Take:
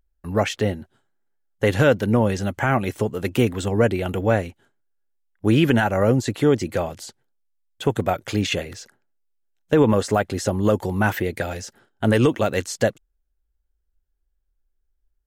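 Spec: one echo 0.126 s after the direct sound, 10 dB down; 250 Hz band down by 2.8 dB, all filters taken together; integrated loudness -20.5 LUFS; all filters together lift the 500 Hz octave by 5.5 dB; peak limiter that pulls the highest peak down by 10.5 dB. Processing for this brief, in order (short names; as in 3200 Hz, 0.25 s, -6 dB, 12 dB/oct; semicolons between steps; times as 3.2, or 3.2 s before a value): bell 250 Hz -6.5 dB; bell 500 Hz +8 dB; limiter -12 dBFS; echo 0.126 s -10 dB; gain +3 dB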